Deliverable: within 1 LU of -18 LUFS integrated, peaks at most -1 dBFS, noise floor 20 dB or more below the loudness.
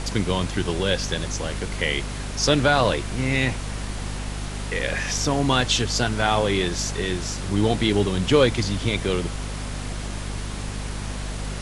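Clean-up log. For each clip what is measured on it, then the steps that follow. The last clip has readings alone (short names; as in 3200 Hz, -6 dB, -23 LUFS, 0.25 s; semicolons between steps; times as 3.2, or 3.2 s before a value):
hum 50 Hz; harmonics up to 250 Hz; hum level -28 dBFS; noise floor -31 dBFS; noise floor target -44 dBFS; loudness -24.0 LUFS; peak -4.5 dBFS; loudness target -18.0 LUFS
-> de-hum 50 Hz, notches 5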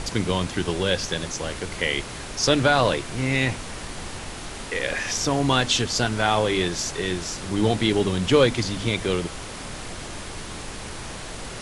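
hum none; noise floor -36 dBFS; noise floor target -43 dBFS
-> noise print and reduce 7 dB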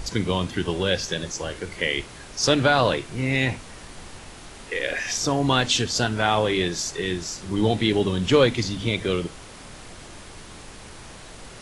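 noise floor -43 dBFS; noise floor target -44 dBFS
-> noise print and reduce 6 dB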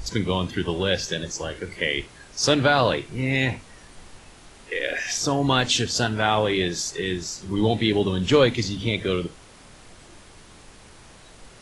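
noise floor -48 dBFS; loudness -23.5 LUFS; peak -4.0 dBFS; loudness target -18.0 LUFS
-> gain +5.5 dB; limiter -1 dBFS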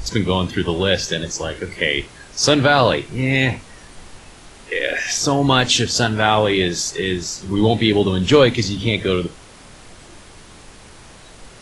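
loudness -18.0 LUFS; peak -1.0 dBFS; noise floor -43 dBFS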